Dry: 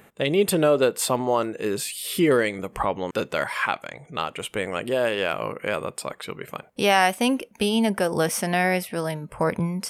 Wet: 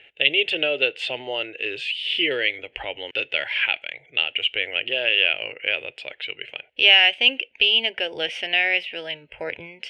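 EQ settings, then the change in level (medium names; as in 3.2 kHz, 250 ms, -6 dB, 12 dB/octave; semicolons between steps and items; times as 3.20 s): resonant low-pass 2.9 kHz, resonance Q 5.9; peaking EQ 2.2 kHz +13 dB 2.3 oct; static phaser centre 470 Hz, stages 4; -9.0 dB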